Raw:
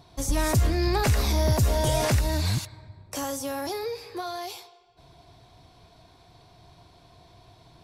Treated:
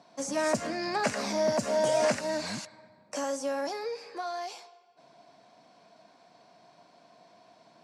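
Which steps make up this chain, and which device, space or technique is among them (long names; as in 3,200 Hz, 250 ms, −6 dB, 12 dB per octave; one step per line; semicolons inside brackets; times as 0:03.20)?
television speaker (loudspeaker in its box 210–8,200 Hz, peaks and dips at 210 Hz +6 dB, 370 Hz −8 dB, 590 Hz +7 dB, 1,600 Hz +3 dB, 3,600 Hz −8 dB)
level −2.5 dB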